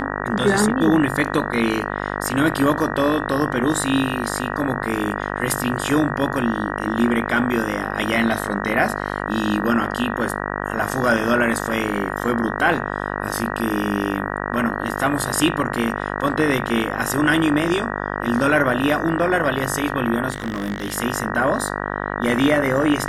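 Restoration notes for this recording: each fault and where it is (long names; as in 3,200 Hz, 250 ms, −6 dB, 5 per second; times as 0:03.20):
mains buzz 50 Hz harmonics 38 −26 dBFS
0:20.30–0:20.98: clipping −19.5 dBFS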